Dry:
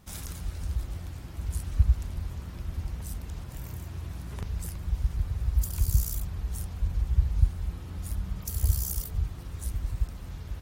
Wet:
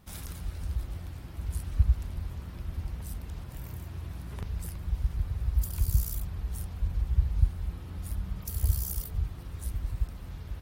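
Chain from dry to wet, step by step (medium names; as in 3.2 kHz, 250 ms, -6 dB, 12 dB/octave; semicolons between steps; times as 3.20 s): peaking EQ 6.8 kHz -5 dB 0.74 oct; trim -1.5 dB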